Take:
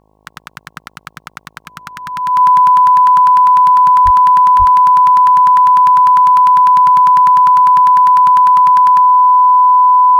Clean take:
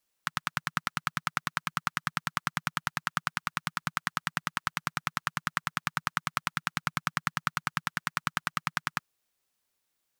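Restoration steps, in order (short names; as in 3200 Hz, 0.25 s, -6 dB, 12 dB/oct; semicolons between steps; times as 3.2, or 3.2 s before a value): de-hum 52.4 Hz, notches 21; notch 1000 Hz, Q 30; 4.04–4.16 HPF 140 Hz 24 dB/oct; 4.58–4.7 HPF 140 Hz 24 dB/oct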